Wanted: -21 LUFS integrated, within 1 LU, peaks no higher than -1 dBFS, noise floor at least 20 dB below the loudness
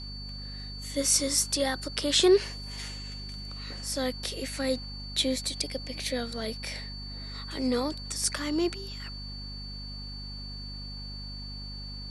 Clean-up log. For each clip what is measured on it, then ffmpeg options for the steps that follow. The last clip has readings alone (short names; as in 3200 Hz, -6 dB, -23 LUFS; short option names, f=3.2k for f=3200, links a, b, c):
hum 50 Hz; harmonics up to 250 Hz; hum level -39 dBFS; steady tone 4500 Hz; tone level -41 dBFS; loudness -30.5 LUFS; peak -9.5 dBFS; loudness target -21.0 LUFS
-> -af "bandreject=f=50:t=h:w=6,bandreject=f=100:t=h:w=6,bandreject=f=150:t=h:w=6,bandreject=f=200:t=h:w=6,bandreject=f=250:t=h:w=6"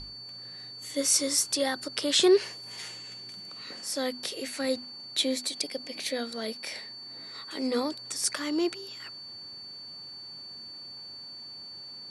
hum none; steady tone 4500 Hz; tone level -41 dBFS
-> -af "bandreject=f=4.5k:w=30"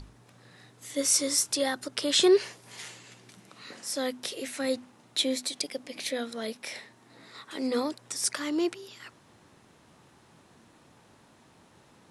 steady tone none; loudness -28.5 LUFS; peak -9.5 dBFS; loudness target -21.0 LUFS
-> -af "volume=7.5dB"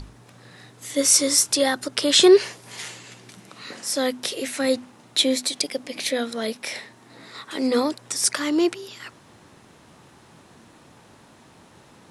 loudness -21.0 LUFS; peak -2.0 dBFS; noise floor -52 dBFS